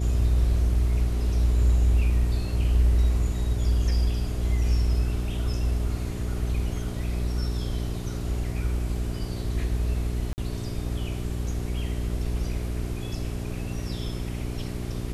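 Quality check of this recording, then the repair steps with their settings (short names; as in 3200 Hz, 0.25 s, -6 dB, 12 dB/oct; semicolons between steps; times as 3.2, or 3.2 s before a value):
hum 60 Hz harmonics 7 -30 dBFS
10.33–10.38 gap 49 ms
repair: de-hum 60 Hz, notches 7; interpolate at 10.33, 49 ms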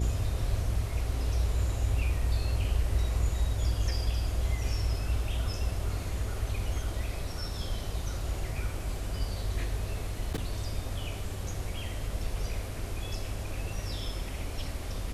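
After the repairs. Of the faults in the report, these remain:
none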